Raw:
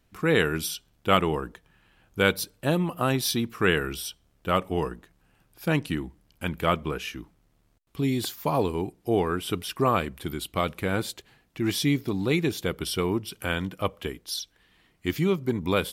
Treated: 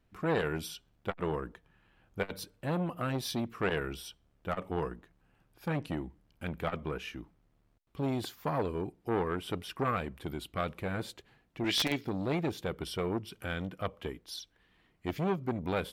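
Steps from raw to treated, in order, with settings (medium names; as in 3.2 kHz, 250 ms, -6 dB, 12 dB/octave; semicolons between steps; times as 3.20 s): 11.64–12.05 s: frequency weighting D; integer overflow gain 9.5 dB; treble shelf 4 kHz -11 dB; transformer saturation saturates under 900 Hz; trim -4 dB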